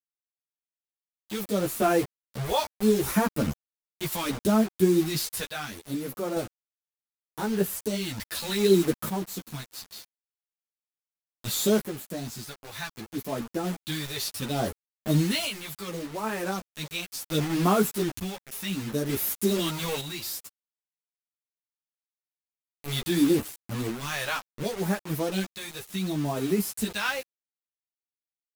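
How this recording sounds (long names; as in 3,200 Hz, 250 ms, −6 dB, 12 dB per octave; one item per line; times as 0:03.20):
phaser sweep stages 2, 0.69 Hz, lowest notch 260–4,400 Hz
a quantiser's noise floor 6 bits, dither none
sample-and-hold tremolo 1.1 Hz, depth 65%
a shimmering, thickened sound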